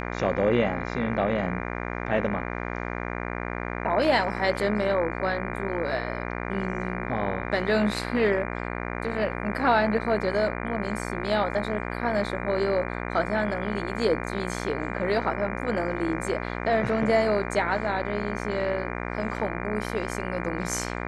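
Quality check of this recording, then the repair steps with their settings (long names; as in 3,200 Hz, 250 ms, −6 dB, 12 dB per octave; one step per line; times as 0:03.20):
mains buzz 60 Hz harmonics 40 −32 dBFS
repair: hum removal 60 Hz, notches 40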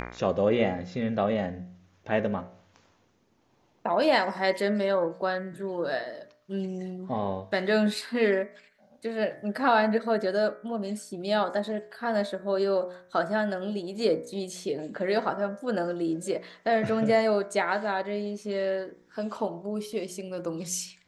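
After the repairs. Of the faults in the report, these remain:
none of them is left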